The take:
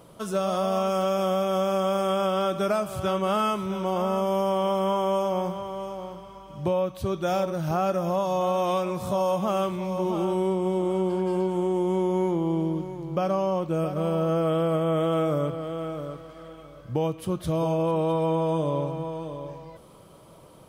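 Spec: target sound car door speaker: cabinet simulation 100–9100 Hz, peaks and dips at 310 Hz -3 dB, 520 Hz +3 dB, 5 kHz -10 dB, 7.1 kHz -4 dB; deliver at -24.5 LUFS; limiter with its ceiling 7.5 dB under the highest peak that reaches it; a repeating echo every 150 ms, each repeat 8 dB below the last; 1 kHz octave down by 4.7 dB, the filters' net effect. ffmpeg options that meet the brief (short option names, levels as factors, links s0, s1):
-af "equalizer=f=1000:t=o:g=-6.5,alimiter=limit=0.0708:level=0:latency=1,highpass=100,equalizer=f=310:t=q:w=4:g=-3,equalizer=f=520:t=q:w=4:g=3,equalizer=f=5000:t=q:w=4:g=-10,equalizer=f=7100:t=q:w=4:g=-4,lowpass=f=9100:w=0.5412,lowpass=f=9100:w=1.3066,aecho=1:1:150|300|450|600|750:0.398|0.159|0.0637|0.0255|0.0102,volume=1.88"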